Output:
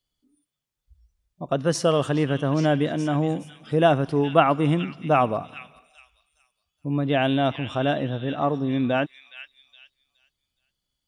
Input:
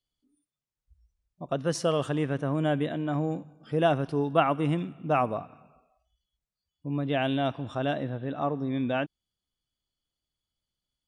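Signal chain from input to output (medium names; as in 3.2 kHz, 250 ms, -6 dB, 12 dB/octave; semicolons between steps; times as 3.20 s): repeats whose band climbs or falls 418 ms, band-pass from 2.7 kHz, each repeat 0.7 oct, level -7 dB; trim +5.5 dB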